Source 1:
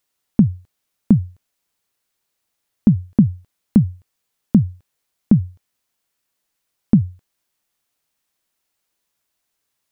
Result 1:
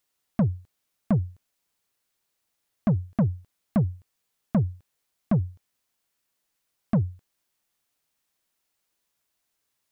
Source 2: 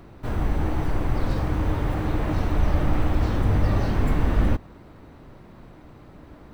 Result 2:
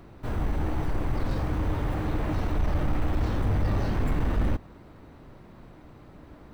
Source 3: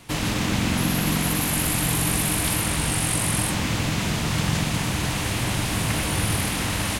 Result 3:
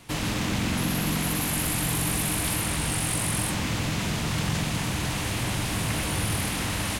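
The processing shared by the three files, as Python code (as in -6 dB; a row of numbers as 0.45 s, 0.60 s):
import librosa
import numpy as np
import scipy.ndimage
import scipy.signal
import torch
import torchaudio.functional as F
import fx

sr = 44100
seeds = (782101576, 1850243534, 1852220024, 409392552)

y = 10.0 ** (-14.5 / 20.0) * np.tanh(x / 10.0 ** (-14.5 / 20.0))
y = y * 10.0 ** (-2.5 / 20.0)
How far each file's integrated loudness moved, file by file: -9.0 LU, -4.0 LU, -3.5 LU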